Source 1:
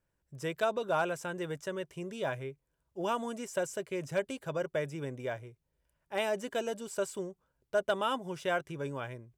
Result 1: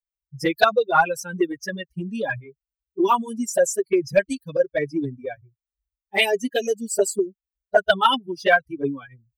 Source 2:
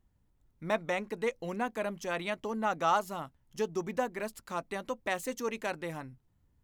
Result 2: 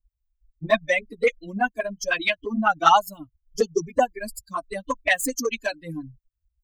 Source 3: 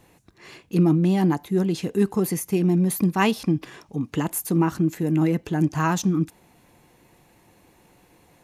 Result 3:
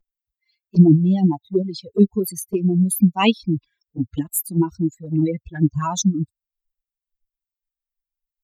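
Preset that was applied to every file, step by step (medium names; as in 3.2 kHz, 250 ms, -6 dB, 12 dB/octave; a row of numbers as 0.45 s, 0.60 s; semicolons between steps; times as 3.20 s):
expander on every frequency bin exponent 3; dynamic bell 560 Hz, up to -5 dB, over -43 dBFS, Q 0.8; touch-sensitive flanger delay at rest 5.8 ms, full sweep at -28.5 dBFS; peak normalisation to -2 dBFS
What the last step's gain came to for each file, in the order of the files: +25.0 dB, +22.5 dB, +12.5 dB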